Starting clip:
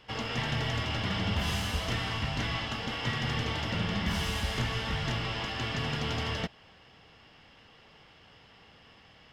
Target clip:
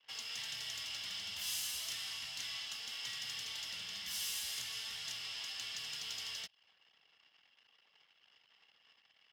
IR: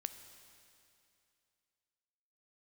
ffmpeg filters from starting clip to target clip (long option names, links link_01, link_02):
-filter_complex "[0:a]anlmdn=0.000631,acrossover=split=150|3000[link_01][link_02][link_03];[link_02]acompressor=threshold=-48dB:ratio=2[link_04];[link_01][link_04][link_03]amix=inputs=3:normalize=0,aderivative,volume=4dB"